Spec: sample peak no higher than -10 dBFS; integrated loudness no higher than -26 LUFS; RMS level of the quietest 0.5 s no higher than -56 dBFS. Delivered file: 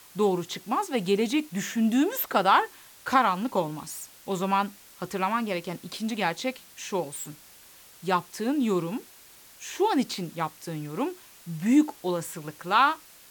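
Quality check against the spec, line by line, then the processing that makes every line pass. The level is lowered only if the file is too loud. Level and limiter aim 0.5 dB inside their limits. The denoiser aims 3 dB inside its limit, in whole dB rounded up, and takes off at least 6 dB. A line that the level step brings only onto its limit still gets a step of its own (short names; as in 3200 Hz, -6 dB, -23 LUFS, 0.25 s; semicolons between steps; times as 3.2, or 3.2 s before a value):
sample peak -7.5 dBFS: fail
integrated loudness -27.0 LUFS: OK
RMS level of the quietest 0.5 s -52 dBFS: fail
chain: denoiser 7 dB, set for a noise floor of -52 dBFS; limiter -10.5 dBFS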